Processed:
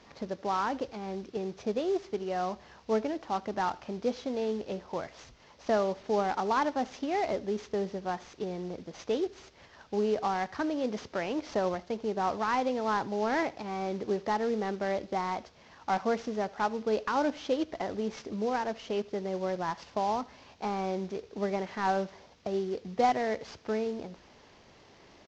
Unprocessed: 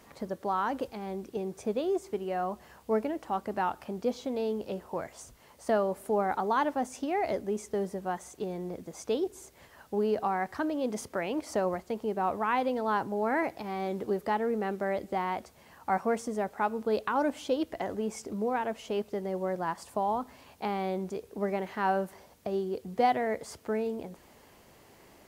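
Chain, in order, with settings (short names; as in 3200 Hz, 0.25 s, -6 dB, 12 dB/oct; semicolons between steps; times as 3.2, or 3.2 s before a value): CVSD 32 kbps; on a send: echo 77 ms -23 dB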